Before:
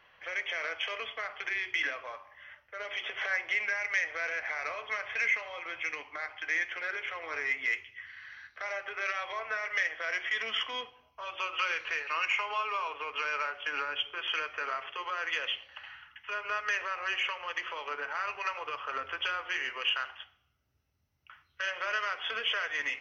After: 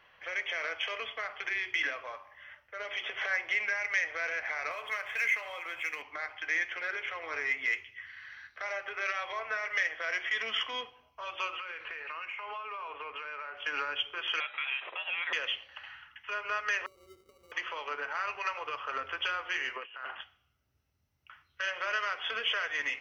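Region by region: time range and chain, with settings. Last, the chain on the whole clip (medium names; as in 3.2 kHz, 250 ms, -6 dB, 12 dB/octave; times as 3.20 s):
4.71–6.02 s: median filter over 5 samples + bass shelf 480 Hz -6 dB + upward compressor, threshold -35 dBFS
11.57–13.57 s: low-pass 2.8 kHz + compression 10:1, threshold -36 dBFS
14.40–15.33 s: bass shelf 71 Hz +11.5 dB + frequency inversion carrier 3.8 kHz
16.86–17.52 s: inverse Chebyshev band-stop 1.3–4.7 kHz, stop band 70 dB + sample-rate reducer 1.7 kHz
19.76–20.21 s: bass shelf 380 Hz +6 dB + compressor with a negative ratio -41 dBFS + band-pass 200–2200 Hz
whole clip: none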